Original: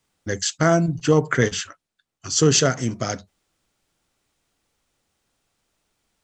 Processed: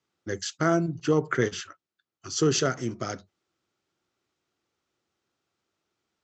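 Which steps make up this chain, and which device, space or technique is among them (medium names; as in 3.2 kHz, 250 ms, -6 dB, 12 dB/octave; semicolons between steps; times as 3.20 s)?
car door speaker (cabinet simulation 96–6800 Hz, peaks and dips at 97 Hz +3 dB, 360 Hz +9 dB, 1.3 kHz +5 dB); trim -8 dB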